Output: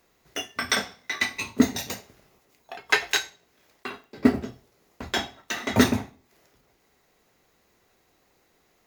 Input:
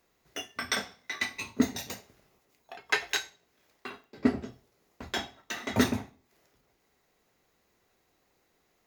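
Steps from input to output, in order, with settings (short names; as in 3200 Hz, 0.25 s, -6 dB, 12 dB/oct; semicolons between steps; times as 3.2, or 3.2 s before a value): block floating point 7-bit; gain +6 dB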